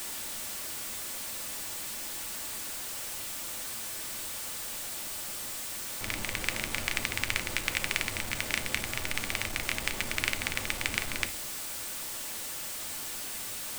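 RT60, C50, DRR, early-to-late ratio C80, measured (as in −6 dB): non-exponential decay, 16.5 dB, 8.0 dB, 21.0 dB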